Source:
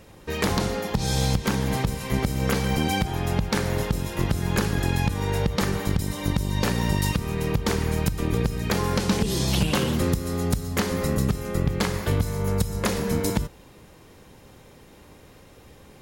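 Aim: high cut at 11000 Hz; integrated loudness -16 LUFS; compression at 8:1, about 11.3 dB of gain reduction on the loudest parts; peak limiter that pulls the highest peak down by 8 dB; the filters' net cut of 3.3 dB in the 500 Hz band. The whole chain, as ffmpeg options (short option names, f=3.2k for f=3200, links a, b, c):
-af "lowpass=11k,equalizer=f=500:t=o:g=-4,acompressor=threshold=-30dB:ratio=8,volume=20dB,alimiter=limit=-5dB:level=0:latency=1"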